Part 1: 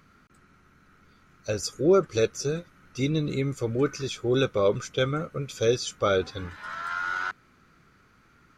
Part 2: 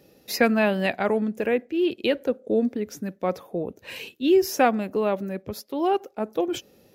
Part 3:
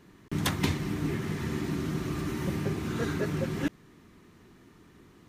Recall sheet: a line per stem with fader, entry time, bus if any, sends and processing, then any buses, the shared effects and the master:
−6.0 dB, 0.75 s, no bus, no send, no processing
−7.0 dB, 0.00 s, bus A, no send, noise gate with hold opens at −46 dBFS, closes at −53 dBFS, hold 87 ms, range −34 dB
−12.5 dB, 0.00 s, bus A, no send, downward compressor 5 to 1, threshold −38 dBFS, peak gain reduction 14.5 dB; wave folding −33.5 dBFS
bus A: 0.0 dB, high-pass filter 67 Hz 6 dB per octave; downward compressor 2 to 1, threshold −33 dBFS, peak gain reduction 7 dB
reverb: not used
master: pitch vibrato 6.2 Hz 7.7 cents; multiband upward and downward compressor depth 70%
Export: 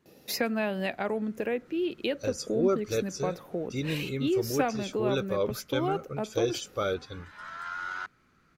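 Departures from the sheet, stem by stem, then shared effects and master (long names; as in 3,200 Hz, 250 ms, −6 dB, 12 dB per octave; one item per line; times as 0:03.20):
stem 2 −7.0 dB → +1.0 dB
master: missing multiband upward and downward compressor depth 70%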